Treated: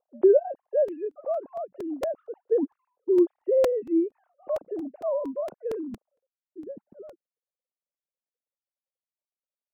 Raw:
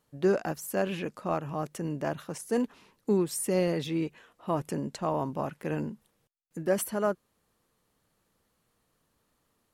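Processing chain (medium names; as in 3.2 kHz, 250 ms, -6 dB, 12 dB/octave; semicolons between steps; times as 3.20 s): formants replaced by sine waves; low-pass sweep 590 Hz -> 210 Hz, 6.10–6.66 s; crackling interface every 0.23 s, samples 128, repeat, from 0.65 s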